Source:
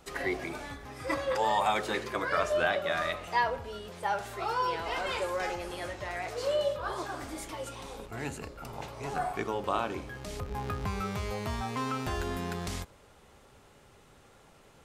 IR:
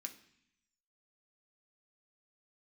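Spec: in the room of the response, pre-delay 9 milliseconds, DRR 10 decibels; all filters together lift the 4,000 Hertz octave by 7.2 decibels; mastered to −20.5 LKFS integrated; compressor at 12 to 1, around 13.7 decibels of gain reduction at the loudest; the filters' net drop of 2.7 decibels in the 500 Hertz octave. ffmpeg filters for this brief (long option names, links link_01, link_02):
-filter_complex "[0:a]equalizer=frequency=500:width_type=o:gain=-3.5,equalizer=frequency=4000:width_type=o:gain=9,acompressor=threshold=-37dB:ratio=12,asplit=2[link_01][link_02];[1:a]atrim=start_sample=2205,adelay=9[link_03];[link_02][link_03]afir=irnorm=-1:irlink=0,volume=-6dB[link_04];[link_01][link_04]amix=inputs=2:normalize=0,volume=20dB"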